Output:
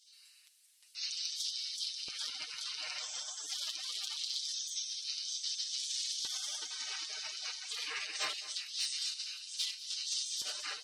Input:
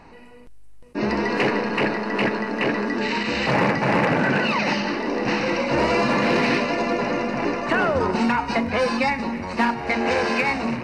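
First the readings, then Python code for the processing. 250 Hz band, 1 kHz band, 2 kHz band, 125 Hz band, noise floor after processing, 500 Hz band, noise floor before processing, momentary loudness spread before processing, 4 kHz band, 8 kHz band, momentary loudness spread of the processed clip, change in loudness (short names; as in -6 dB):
under -40 dB, -30.5 dB, -23.0 dB, under -40 dB, -63 dBFS, -39.0 dB, -43 dBFS, 4 LU, -3.0 dB, +6.0 dB, 4 LU, -15.0 dB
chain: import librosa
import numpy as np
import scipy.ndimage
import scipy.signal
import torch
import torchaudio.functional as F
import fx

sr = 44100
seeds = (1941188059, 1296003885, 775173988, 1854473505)

p1 = fx.spec_gate(x, sr, threshold_db=-30, keep='weak')
p2 = fx.high_shelf(p1, sr, hz=2200.0, db=2.5)
p3 = p2 + 0.73 * np.pad(p2, (int(6.6 * sr / 1000.0), 0))[:len(p2)]
p4 = fx.rider(p3, sr, range_db=10, speed_s=0.5)
p5 = p3 + (p4 * 10.0 ** (1.0 / 20.0))
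p6 = np.clip(p5, -10.0 ** (-21.5 / 20.0), 10.0 ** (-21.5 / 20.0))
p7 = fx.filter_lfo_highpass(p6, sr, shape='square', hz=0.24, low_hz=380.0, high_hz=3900.0, q=1.3)
p8 = p7 + fx.echo_single(p7, sr, ms=214, db=-16.0, dry=0)
y = p8 * 10.0 ** (-5.0 / 20.0)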